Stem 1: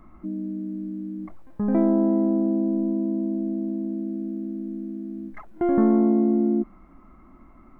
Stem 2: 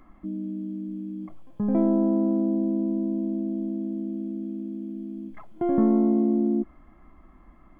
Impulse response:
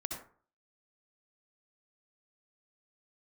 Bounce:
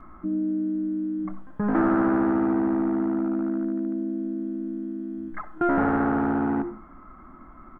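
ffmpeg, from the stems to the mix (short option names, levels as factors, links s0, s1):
-filter_complex "[0:a]bandreject=f=48.67:t=h:w=4,bandreject=f=97.34:t=h:w=4,bandreject=f=146.01:t=h:w=4,bandreject=f=194.68:t=h:w=4,volume=11.2,asoftclip=hard,volume=0.0891,lowpass=f=1500:t=q:w=3.2,volume=0.944,asplit=2[s0][s1];[s1]volume=0.316[s2];[1:a]adelay=5.9,volume=0.631[s3];[2:a]atrim=start_sample=2205[s4];[s2][s4]afir=irnorm=-1:irlink=0[s5];[s0][s3][s5]amix=inputs=3:normalize=0"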